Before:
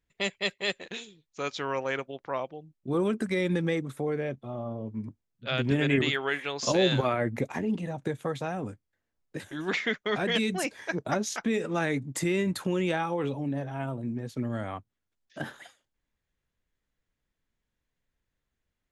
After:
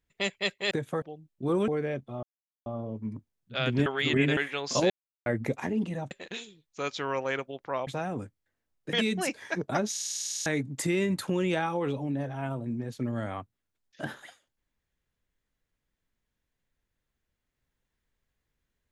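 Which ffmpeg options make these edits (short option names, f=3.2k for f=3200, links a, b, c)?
-filter_complex "[0:a]asplit=23[a][b][c][d][e][f][g][h][i][j][k][l][m][n][o][p][q][r][s][t][u][v][w];[a]atrim=end=0.712[x];[b]atrim=start=8.028:end=8.342[y];[c]atrim=start=2.468:end=3.132[z];[d]atrim=start=4.028:end=4.58,asetpts=PTS-STARTPTS,afade=t=out:st=0.548:d=0.004:c=hsin,apad=pad_dur=0.43[aa];[e]atrim=start=4.58:end=5.782,asetpts=PTS-STARTPTS,afade=t=in:d=0.004:c=hsin[ab];[f]atrim=start=5.778:end=6.292,asetpts=PTS-STARTPTS,areverse[ac];[g]atrim=start=6.288:end=6.82,asetpts=PTS-STARTPTS,afade=t=out:st=0.528:d=0.004:c=hsin[ad];[h]atrim=start=6.82:end=7.18,asetpts=PTS-STARTPTS,volume=0[ae];[i]atrim=start=7.18:end=8.032,asetpts=PTS-STARTPTS,afade=t=in:d=0.004:c=hsin[af];[j]atrim=start=0.708:end=2.472[ag];[k]atrim=start=8.338:end=9.402[ah];[l]atrim=start=10.298:end=11.332[ai];[m]atrim=start=11.278:end=11.332[aj];[n]atrim=start=11.278:end=11.332[ak];[o]atrim=start=11.278:end=11.332[al];[p]atrim=start=11.278:end=11.332[am];[q]atrim=start=11.278:end=11.332[an];[r]atrim=start=11.278:end=11.332[ao];[s]atrim=start=11.278:end=11.332[ap];[t]atrim=start=11.278:end=11.332[aq];[u]atrim=start=11.278:end=11.332[ar];[v]atrim=start=11.278:end=11.332[as];[w]atrim=start=11.828[at];[x][y]acrossfade=d=0.004:c1=hsin:c2=hsin[au];[au][z]acrossfade=d=0.004:c1=hsin:c2=hsin[av];[aa][ab]concat=n=2:v=0:a=1[aw];[av][aw]acrossfade=d=0.004:c1=hsin:c2=hsin[ax];[ax][ac]acrossfade=d=0.004:c1=hsin:c2=hsin[ay];[ad][ae][af]concat=n=3:v=0:a=1[az];[ay][az]acrossfade=d=0.004:c1=hsin:c2=hsin[ba];[ba][ag]acrossfade=d=0.004:c1=hsin:c2=hsin[bb];[bb][ah]acrossfade=d=0.004:c1=hsin:c2=hsin[bc];[bc][ai]acrossfade=d=0.004:c1=hsin:c2=hsin[bd];[bd][aj]acrossfade=d=0.004:c1=hsin:c2=hsin[be];[be][ak]acrossfade=d=0.004:c1=hsin:c2=hsin[bf];[bf][al]acrossfade=d=0.004:c1=hsin:c2=hsin[bg];[bg][am]acrossfade=d=0.004:c1=hsin:c2=hsin[bh];[bh][an]acrossfade=d=0.004:c1=hsin:c2=hsin[bi];[bi][ao]acrossfade=d=0.004:c1=hsin:c2=hsin[bj];[bj][ap]acrossfade=d=0.004:c1=hsin:c2=hsin[bk];[bk][aq]acrossfade=d=0.004:c1=hsin:c2=hsin[bl];[bl][ar]acrossfade=d=0.004:c1=hsin:c2=hsin[bm];[bm][as]acrossfade=d=0.004:c1=hsin:c2=hsin[bn];[bn][at]acrossfade=d=0.004:c1=hsin:c2=hsin"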